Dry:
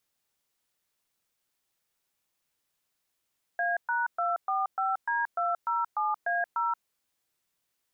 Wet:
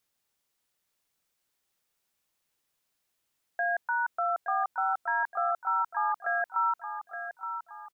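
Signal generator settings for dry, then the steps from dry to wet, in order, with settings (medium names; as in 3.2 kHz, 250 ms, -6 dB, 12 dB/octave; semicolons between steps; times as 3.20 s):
DTMF "A#245D207A0", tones 178 ms, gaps 119 ms, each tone -28 dBFS
on a send: feedback delay 870 ms, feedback 40%, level -9 dB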